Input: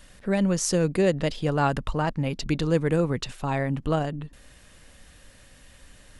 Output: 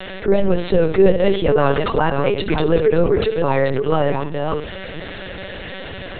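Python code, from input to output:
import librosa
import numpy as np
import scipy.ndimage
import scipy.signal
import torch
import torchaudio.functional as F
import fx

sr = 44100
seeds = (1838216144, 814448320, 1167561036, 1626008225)

p1 = fx.reverse_delay(x, sr, ms=384, wet_db=-9.0)
p2 = scipy.signal.sosfilt(scipy.signal.butter(4, 180.0, 'highpass', fs=sr, output='sos'), p1)
p3 = fx.peak_eq(p2, sr, hz=440.0, db=12.0, octaves=0.38)
p4 = p3 + 0.72 * np.pad(p3, (int(5.3 * sr / 1000.0), 0))[:len(p3)]
p5 = p4 + fx.room_flutter(p4, sr, wall_m=11.1, rt60_s=0.27, dry=0)
p6 = fx.lpc_vocoder(p5, sr, seeds[0], excitation='pitch_kept', order=10)
y = fx.env_flatten(p6, sr, amount_pct=50)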